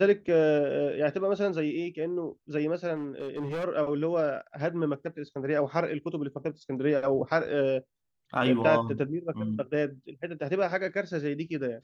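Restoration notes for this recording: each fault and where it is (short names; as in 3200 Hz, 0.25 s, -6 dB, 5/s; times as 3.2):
2.95–3.65 clipped -29.5 dBFS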